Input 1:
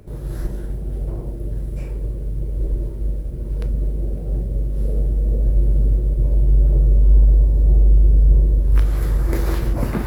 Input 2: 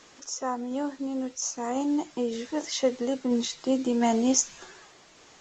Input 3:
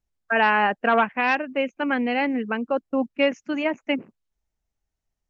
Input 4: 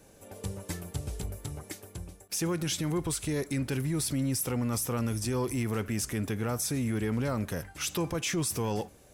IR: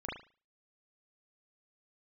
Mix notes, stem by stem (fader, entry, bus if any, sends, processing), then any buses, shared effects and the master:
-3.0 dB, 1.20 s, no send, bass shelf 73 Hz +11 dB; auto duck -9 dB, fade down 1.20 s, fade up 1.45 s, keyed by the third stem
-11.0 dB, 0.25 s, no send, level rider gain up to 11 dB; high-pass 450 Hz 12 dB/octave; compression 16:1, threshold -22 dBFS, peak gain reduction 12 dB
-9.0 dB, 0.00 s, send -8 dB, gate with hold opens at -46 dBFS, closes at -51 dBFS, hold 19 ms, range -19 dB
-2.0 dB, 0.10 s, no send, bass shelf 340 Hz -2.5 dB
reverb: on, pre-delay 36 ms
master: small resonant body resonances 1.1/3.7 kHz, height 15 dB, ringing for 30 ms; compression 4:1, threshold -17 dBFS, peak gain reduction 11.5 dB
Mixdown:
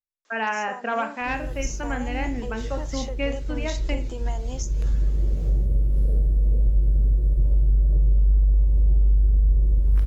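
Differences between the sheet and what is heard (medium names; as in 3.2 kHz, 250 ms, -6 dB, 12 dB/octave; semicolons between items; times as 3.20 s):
stem 4: muted; master: missing small resonant body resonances 1.1/3.7 kHz, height 15 dB, ringing for 30 ms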